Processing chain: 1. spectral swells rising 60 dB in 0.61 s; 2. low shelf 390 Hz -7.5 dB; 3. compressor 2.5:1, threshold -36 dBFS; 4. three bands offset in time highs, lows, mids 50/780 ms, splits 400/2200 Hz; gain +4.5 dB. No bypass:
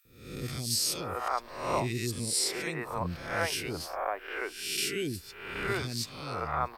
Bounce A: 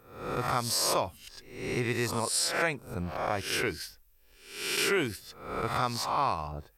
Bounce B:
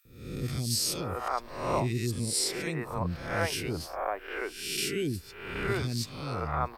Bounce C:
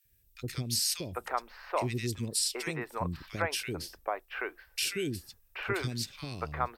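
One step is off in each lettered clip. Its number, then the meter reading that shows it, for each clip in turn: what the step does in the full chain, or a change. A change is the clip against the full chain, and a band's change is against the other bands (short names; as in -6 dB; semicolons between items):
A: 4, echo-to-direct 6.0 dB to none; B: 2, 125 Hz band +5.0 dB; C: 1, 125 Hz band +2.0 dB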